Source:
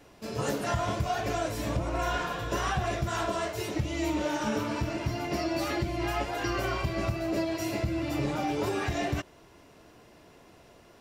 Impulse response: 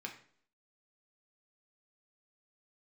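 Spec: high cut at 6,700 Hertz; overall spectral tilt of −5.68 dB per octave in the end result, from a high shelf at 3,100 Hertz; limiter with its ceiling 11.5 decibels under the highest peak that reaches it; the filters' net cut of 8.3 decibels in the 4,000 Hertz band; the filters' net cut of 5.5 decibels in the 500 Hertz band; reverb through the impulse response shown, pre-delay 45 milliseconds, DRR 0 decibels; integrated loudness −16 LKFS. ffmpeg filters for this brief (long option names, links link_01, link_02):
-filter_complex "[0:a]lowpass=6700,equalizer=frequency=500:width_type=o:gain=-8,highshelf=frequency=3100:gain=-7,equalizer=frequency=4000:width_type=o:gain=-5.5,alimiter=level_in=5.5dB:limit=-24dB:level=0:latency=1,volume=-5.5dB,asplit=2[link_01][link_02];[1:a]atrim=start_sample=2205,adelay=45[link_03];[link_02][link_03]afir=irnorm=-1:irlink=0,volume=1dB[link_04];[link_01][link_04]amix=inputs=2:normalize=0,volume=19.5dB"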